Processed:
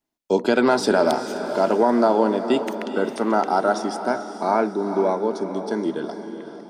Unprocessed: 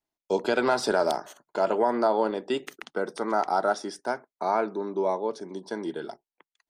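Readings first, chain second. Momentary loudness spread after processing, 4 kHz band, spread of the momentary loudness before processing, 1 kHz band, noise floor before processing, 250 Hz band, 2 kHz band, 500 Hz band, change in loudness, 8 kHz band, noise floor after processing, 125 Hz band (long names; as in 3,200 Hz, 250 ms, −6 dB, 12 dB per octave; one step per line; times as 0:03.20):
8 LU, +4.5 dB, 11 LU, +5.0 dB, below −85 dBFS, +10.0 dB, +4.5 dB, +6.0 dB, +6.0 dB, +4.5 dB, −41 dBFS, can't be measured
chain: parametric band 240 Hz +7.5 dB 0.93 octaves
feedback delay with all-pass diffusion 453 ms, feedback 47%, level −9.5 dB
level +4 dB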